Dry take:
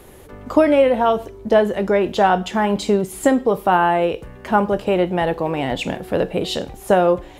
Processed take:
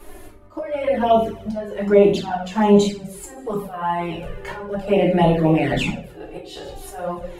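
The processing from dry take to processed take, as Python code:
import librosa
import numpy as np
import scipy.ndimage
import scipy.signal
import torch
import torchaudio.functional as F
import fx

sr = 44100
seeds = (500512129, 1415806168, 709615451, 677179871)

y = fx.peak_eq(x, sr, hz=3700.0, db=-2.0, octaves=0.29)
y = fx.hum_notches(y, sr, base_hz=60, count=9)
y = fx.echo_wet_highpass(y, sr, ms=150, feedback_pct=52, hz=2900.0, wet_db=-15)
y = fx.auto_swell(y, sr, attack_ms=591.0)
y = fx.room_shoebox(y, sr, seeds[0], volume_m3=50.0, walls='mixed', distance_m=0.94)
y = fx.env_flanger(y, sr, rest_ms=3.5, full_db=-10.0)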